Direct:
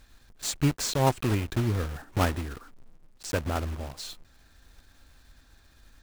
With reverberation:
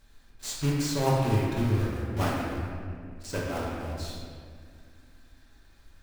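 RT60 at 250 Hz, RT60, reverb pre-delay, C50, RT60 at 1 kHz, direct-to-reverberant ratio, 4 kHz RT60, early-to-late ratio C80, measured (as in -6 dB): 2.8 s, 2.1 s, 5 ms, -0.5 dB, 1.9 s, -5.0 dB, 1.3 s, 1.0 dB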